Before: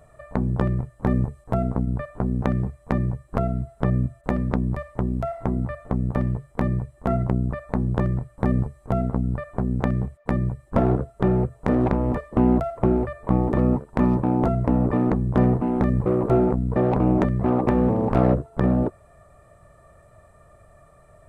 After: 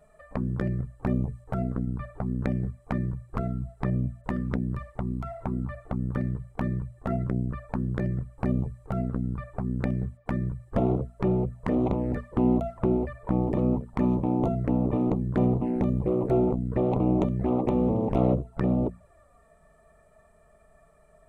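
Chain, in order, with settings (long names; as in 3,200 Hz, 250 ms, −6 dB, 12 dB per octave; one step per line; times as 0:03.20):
mains-hum notches 60/120/180/240 Hz
flanger swept by the level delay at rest 5 ms, full sweep at −18 dBFS
level −3 dB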